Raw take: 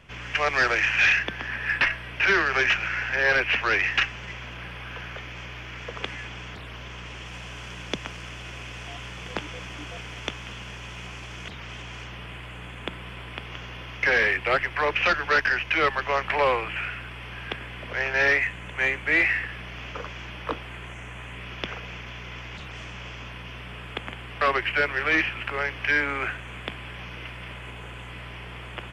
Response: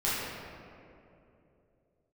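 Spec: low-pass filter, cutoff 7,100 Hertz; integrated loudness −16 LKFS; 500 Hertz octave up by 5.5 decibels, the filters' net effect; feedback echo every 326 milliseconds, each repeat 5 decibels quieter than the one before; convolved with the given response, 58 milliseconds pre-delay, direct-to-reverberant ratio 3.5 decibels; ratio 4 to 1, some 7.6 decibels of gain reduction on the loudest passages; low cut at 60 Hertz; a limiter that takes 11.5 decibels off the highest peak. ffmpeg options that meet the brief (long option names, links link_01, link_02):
-filter_complex "[0:a]highpass=60,lowpass=7100,equalizer=frequency=500:width_type=o:gain=6.5,acompressor=threshold=-24dB:ratio=4,alimiter=limit=-22dB:level=0:latency=1,aecho=1:1:326|652|978|1304|1630|1956|2282:0.562|0.315|0.176|0.0988|0.0553|0.031|0.0173,asplit=2[link_01][link_02];[1:a]atrim=start_sample=2205,adelay=58[link_03];[link_02][link_03]afir=irnorm=-1:irlink=0,volume=-14dB[link_04];[link_01][link_04]amix=inputs=2:normalize=0,volume=14dB"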